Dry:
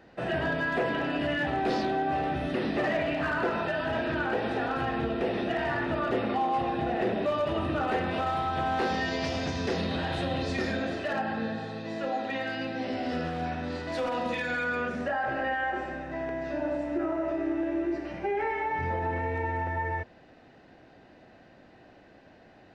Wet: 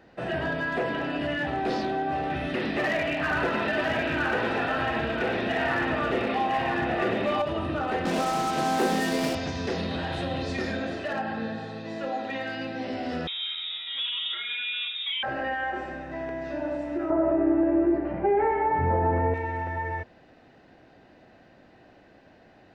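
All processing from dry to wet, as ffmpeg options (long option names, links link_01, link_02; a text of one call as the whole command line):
ffmpeg -i in.wav -filter_complex "[0:a]asettb=1/sr,asplit=3[link_01][link_02][link_03];[link_01]atrim=end=2.304[link_04];[link_02]atrim=start=2.3:end=7.42,asetpts=PTS-STARTPTS,afade=type=in:duration=0.004:curve=qsin,afade=type=out:start_time=5.116:duration=0.004:curve=qsin,equalizer=frequency=2300:width=1:gain=6,asoftclip=type=hard:threshold=-21dB,aecho=1:1:999:0.631,atrim=end_sample=225792[link_05];[link_03]atrim=start=7.416[link_06];[link_04][link_05]acrossfade=duration=0.004:curve1=hsin:curve2=qsin[link_07];[link_07][link_06]acrossfade=duration=0.004:curve1=qsin:curve2=hsin,asettb=1/sr,asplit=3[link_08][link_09][link_10];[link_08]atrim=end=8.054[link_11];[link_09]atrim=start=8.05:end=9.35,asetpts=PTS-STARTPTS,afade=type=in:duration=0.004:curve=qsin,afade=type=out:start_time=1.296:duration=0.004:curve=qsin,highpass=frequency=170:width=0.5412,highpass=frequency=170:width=1.3066,lowshelf=frequency=490:gain=9,acrusher=bits=4:mix=0:aa=0.5[link_12];[link_10]atrim=start=9.346[link_13];[link_11][link_12]acrossfade=duration=0.004:curve1=hsin:curve2=qsin[link_14];[link_14][link_13]acrossfade=duration=0.004:curve1=qsin:curve2=hsin,asettb=1/sr,asplit=3[link_15][link_16][link_17];[link_15]atrim=end=13.274[link_18];[link_16]atrim=start=13.27:end=15.23,asetpts=PTS-STARTPTS,afade=type=in:duration=0.004:curve=qsin,afade=type=out:start_time=1.956:duration=0.004:curve=qsin,highshelf=frequency=2900:gain=-10,lowpass=frequency=3300:width_type=q:width=0.5098,lowpass=frequency=3300:width_type=q:width=0.6013,lowpass=frequency=3300:width_type=q:width=0.9,lowpass=frequency=3300:width_type=q:width=2.563,afreqshift=-3900[link_19];[link_17]atrim=start=15.226[link_20];[link_18][link_19]acrossfade=duration=0.004:curve1=hsin:curve2=qsin[link_21];[link_21][link_20]acrossfade=duration=0.004:curve1=qsin:curve2=hsin,asettb=1/sr,asplit=3[link_22][link_23][link_24];[link_22]atrim=end=17.104[link_25];[link_23]atrim=start=17.1:end=19.34,asetpts=PTS-STARTPTS,afade=type=in:duration=0.004:curve=qsin,afade=type=out:start_time=2.236:duration=0.004:curve=qsin,lowpass=1200,acontrast=90[link_26];[link_24]atrim=start=19.336[link_27];[link_25][link_26]acrossfade=duration=0.004:curve1=hsin:curve2=qsin[link_28];[link_28][link_27]acrossfade=duration=0.004:curve1=qsin:curve2=hsin" out.wav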